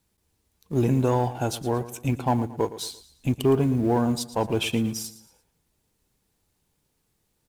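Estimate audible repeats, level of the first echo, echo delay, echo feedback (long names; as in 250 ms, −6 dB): 3, −15.0 dB, 114 ms, 38%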